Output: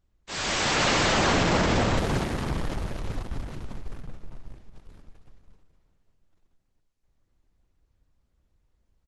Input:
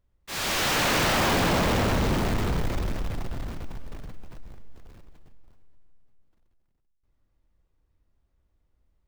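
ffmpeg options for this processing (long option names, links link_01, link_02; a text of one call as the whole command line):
ffmpeg -i in.wav -filter_complex "[0:a]asettb=1/sr,asplit=3[link_01][link_02][link_03];[link_01]atrim=end=4.034[link_04];[link_02]atrim=start=4.03:end=4.44,asetpts=PTS-STARTPTS,afade=type=in:duration=0.004:curve=qsin,afade=type=out:start_time=0.406:duration=0.004:curve=qsin,highshelf=frequency=2100:gain=-6[link_05];[link_03]atrim=start=4.436[link_06];[link_04][link_05]acrossfade=duration=0.004:curve1=hsin:curve2=qsin[link_07];[link_07][link_06]acrossfade=duration=0.004:curve1=qsin:curve2=hsin,aecho=1:1:217|434|651|868|1085|1302:0.237|0.13|0.0717|0.0395|0.0217|0.0119,volume=1dB" -ar 48000 -c:a libopus -b:a 12k out.opus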